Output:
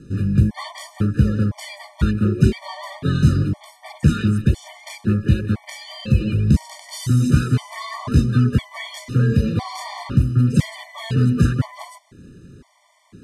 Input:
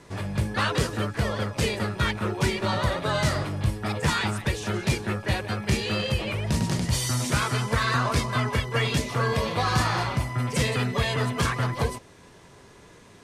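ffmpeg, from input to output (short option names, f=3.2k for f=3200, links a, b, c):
-af "lowshelf=f=390:t=q:w=1.5:g=12,afftfilt=real='re*gt(sin(2*PI*0.99*pts/sr)*(1-2*mod(floor(b*sr/1024/600),2)),0)':imag='im*gt(sin(2*PI*0.99*pts/sr)*(1-2*mod(floor(b*sr/1024/600),2)),0)':win_size=1024:overlap=0.75,volume=-1.5dB"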